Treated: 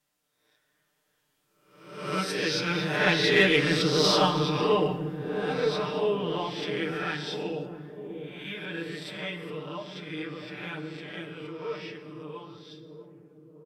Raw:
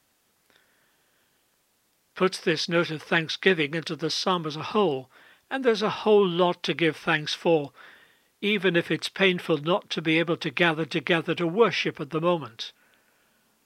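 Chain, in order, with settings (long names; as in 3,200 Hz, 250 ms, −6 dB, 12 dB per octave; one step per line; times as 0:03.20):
peak hold with a rise ahead of every peak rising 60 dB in 0.90 s
source passing by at 0:03.78, 7 m/s, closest 4.9 metres
comb filter 6.7 ms, depth 99%
hum removal 80.34 Hz, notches 27
in parallel at −5 dB: soft clipping −19 dBFS, distortion −11 dB
on the sum: flanger 1 Hz, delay 4.5 ms, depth 4.5 ms, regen −46%
on a send: delay with a low-pass on its return 646 ms, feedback 58%, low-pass 450 Hz, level −5.5 dB
on the sum: reverb whose tail is shaped and stops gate 350 ms falling, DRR 9 dB
level −1 dB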